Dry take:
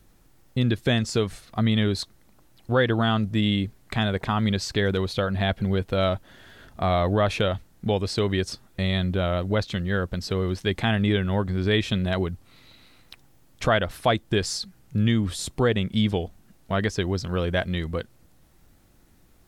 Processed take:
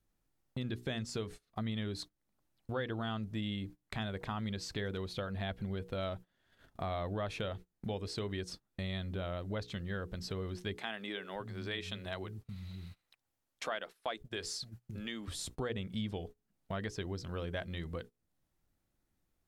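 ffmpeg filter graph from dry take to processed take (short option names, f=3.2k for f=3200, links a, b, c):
-filter_complex "[0:a]asettb=1/sr,asplit=3[a][b][c];[a]atrim=end=10.784[d];[b]atrim=start=10.78:end=15.28,asetpts=PTS-STARTPTS,afade=t=in:d=0.004:c=qsin,afade=t=out:st=4.496:d=0.004:c=qsin,lowshelf=f=360:g=-9.5,acrossover=split=190[e][f];[e]adelay=570[g];[g][f]amix=inputs=2:normalize=0,atrim=end_sample=198450[h];[c]atrim=start=15.276[i];[d][h]acrossfade=d=0.004:c1=hsin:c2=qsin[j];[j][i]acrossfade=d=0.004:c1=qsin:c2=hsin,bandreject=f=60:t=h:w=6,bandreject=f=120:t=h:w=6,bandreject=f=180:t=h:w=6,bandreject=f=240:t=h:w=6,bandreject=f=300:t=h:w=6,bandreject=f=360:t=h:w=6,bandreject=f=420:t=h:w=6,bandreject=f=480:t=h:w=6,acompressor=threshold=-47dB:ratio=2,agate=range=-22dB:threshold=-47dB:ratio=16:detection=peak"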